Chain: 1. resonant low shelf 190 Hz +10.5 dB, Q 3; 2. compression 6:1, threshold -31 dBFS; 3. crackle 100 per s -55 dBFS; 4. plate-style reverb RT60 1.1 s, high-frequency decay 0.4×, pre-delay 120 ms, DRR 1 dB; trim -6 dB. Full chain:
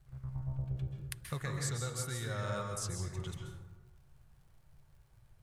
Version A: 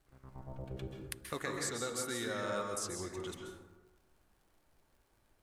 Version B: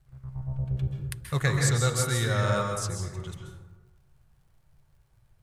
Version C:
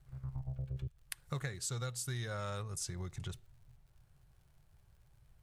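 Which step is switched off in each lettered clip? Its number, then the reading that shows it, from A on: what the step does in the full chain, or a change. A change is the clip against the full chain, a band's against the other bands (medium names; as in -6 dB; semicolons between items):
1, 125 Hz band -13.0 dB; 2, mean gain reduction 7.0 dB; 4, crest factor change +2.5 dB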